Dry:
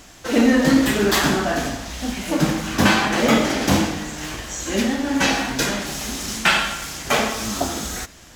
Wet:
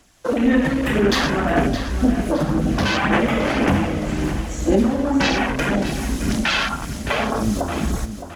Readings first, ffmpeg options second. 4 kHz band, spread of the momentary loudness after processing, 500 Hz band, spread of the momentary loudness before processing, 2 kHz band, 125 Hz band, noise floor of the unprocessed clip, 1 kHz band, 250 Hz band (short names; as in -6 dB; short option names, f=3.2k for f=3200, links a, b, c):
-3.0 dB, 6 LU, +1.5 dB, 11 LU, -1.5 dB, +3.5 dB, -45 dBFS, -0.5 dB, +1.0 dB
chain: -filter_complex "[0:a]afwtdn=0.0562,equalizer=f=10k:w=4.1:g=8,acrossover=split=150|3000[a][b][c];[b]acompressor=threshold=-19dB:ratio=6[d];[a][d][c]amix=inputs=3:normalize=0,alimiter=limit=-19.5dB:level=0:latency=1:release=338,dynaudnorm=f=110:g=5:m=5.5dB,aphaser=in_gain=1:out_gain=1:delay=2:decay=0.35:speed=1.9:type=sinusoidal,aecho=1:1:616|1232|1848|2464:0.282|0.121|0.0521|0.0224,volume=3.5dB"